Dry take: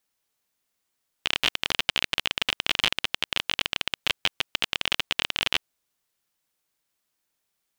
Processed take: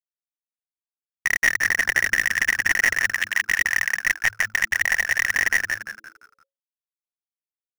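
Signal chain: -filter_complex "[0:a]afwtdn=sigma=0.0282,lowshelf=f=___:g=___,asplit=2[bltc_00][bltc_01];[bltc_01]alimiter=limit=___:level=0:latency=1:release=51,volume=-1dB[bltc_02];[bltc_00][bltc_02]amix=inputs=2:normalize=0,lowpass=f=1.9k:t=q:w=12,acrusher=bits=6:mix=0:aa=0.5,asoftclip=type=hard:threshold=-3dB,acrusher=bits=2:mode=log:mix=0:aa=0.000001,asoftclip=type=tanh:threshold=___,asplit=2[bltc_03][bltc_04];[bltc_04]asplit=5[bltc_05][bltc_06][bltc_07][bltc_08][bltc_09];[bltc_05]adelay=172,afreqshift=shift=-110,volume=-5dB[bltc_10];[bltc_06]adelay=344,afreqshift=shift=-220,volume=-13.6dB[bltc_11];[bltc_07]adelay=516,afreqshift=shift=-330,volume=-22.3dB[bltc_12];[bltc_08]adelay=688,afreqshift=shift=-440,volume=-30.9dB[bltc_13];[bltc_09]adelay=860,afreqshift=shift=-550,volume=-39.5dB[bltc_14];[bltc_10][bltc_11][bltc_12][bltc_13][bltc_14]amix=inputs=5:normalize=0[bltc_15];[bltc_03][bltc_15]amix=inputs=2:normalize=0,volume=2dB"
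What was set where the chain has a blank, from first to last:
73, 7, -13dB, -14dB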